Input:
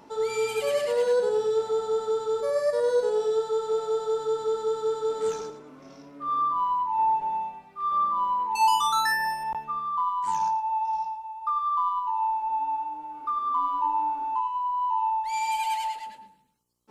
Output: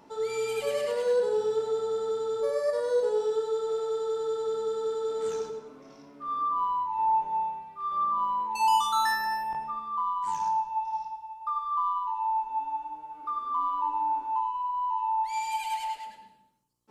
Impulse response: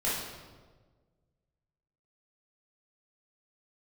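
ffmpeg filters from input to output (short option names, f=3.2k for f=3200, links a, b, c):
-filter_complex "[0:a]asplit=2[a][b];[1:a]atrim=start_sample=2205,afade=t=out:st=0.36:d=0.01,atrim=end_sample=16317,adelay=41[c];[b][c]afir=irnorm=-1:irlink=0,volume=-16dB[d];[a][d]amix=inputs=2:normalize=0,volume=-4dB"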